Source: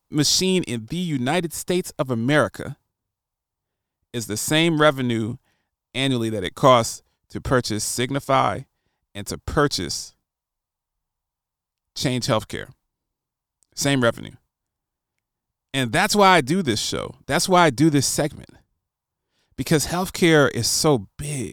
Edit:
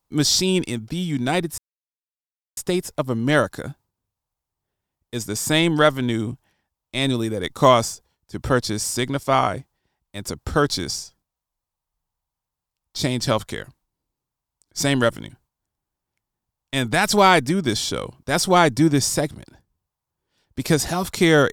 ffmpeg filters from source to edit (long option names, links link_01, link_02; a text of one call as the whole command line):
ffmpeg -i in.wav -filter_complex "[0:a]asplit=2[link_01][link_02];[link_01]atrim=end=1.58,asetpts=PTS-STARTPTS,afade=type=out:start_time=1.576:duration=0.004:curve=hsin,apad=pad_dur=0.99[link_03];[link_02]atrim=start=1.58,asetpts=PTS-STARTPTS,afade=type=in:duration=0.004:curve=hsin[link_04];[link_03][link_04]concat=n=2:v=0:a=1" out.wav